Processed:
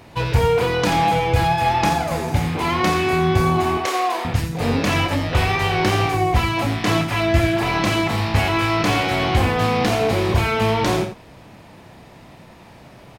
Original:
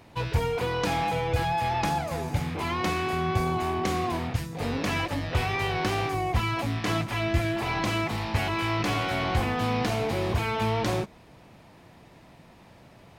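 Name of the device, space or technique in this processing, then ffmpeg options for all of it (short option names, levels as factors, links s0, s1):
slapback doubling: -filter_complex "[0:a]asettb=1/sr,asplit=3[s0][s1][s2];[s0]atrim=end=3.774[s3];[s1]atrim=start=3.77:end=4.25,asetpts=PTS-STARTPTS,afade=t=in:d=0.004:c=qsin,afade=t=out:st=0.476:d=0.004:c=qsin,highpass=f=430:w=0.5412,highpass=f=430:w=1.3066[s4];[s2]atrim=start=4.246[s5];[s3][s4]acrossfade=d=0.004:c1=hsin:c2=qsin[s6];[s6][s5]acrossfade=d=0.004:c1=qsin:c2=hsin,asplit=3[s7][s8][s9];[s8]adelay=30,volume=0.398[s10];[s9]adelay=86,volume=0.335[s11];[s7][s10][s11]amix=inputs=3:normalize=0,volume=2.37"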